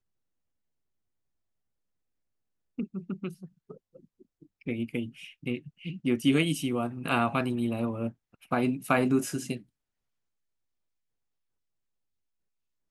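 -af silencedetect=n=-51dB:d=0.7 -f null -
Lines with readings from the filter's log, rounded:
silence_start: 0.00
silence_end: 2.78 | silence_duration: 2.78
silence_start: 9.62
silence_end: 12.91 | silence_duration: 3.28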